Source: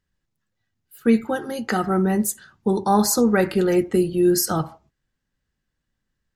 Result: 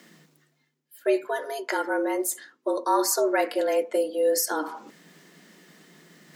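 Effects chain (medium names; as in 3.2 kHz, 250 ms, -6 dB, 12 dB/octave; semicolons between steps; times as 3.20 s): bass shelf 160 Hz -9.5 dB; reverse; upward compressor, threshold -24 dBFS; reverse; frequency shift +150 Hz; trim -3.5 dB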